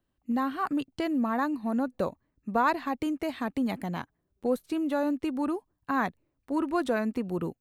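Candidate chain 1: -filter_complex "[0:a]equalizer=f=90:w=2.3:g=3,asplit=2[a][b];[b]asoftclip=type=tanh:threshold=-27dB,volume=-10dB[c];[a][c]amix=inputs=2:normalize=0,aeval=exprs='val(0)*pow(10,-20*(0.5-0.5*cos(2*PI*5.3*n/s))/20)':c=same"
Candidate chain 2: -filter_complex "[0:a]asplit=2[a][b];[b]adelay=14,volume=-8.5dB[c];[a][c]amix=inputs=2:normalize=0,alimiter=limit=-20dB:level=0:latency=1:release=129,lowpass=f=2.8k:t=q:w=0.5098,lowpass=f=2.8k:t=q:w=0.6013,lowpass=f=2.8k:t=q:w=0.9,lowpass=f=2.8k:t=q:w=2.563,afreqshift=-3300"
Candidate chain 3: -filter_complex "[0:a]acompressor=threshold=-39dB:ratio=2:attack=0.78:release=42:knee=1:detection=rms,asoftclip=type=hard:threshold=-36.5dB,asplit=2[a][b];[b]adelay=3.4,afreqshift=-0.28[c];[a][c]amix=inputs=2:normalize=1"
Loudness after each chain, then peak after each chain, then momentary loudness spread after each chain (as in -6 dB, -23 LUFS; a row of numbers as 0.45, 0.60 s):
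-34.0, -27.5, -44.5 LUFS; -15.0, -16.5, -31.5 dBFS; 8, 7, 8 LU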